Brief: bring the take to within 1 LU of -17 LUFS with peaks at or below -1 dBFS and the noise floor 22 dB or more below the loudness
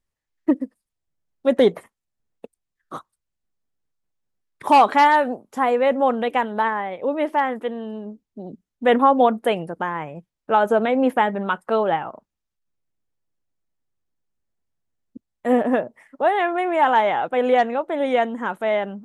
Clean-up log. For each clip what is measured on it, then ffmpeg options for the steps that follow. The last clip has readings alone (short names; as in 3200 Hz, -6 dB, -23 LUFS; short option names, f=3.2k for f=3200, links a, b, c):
loudness -20.5 LUFS; peak -5.0 dBFS; loudness target -17.0 LUFS
-> -af "volume=3.5dB"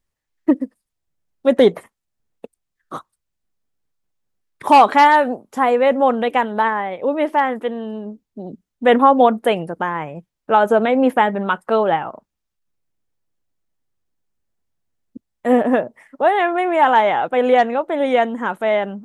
loudness -17.0 LUFS; peak -1.5 dBFS; noise floor -80 dBFS